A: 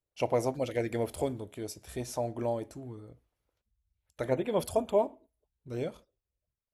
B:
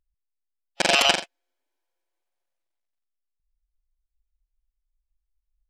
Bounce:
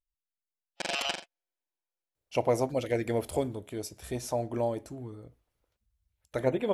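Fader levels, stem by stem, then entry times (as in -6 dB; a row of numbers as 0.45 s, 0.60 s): +2.0 dB, -13.0 dB; 2.15 s, 0.00 s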